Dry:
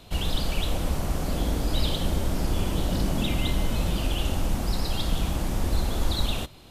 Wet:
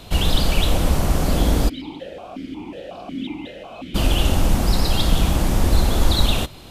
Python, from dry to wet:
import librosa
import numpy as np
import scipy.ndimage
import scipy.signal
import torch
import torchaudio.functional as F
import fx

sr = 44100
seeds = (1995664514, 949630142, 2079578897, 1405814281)

y = fx.vowel_held(x, sr, hz=5.5, at=(1.68, 3.94), fade=0.02)
y = y * librosa.db_to_amplitude(8.5)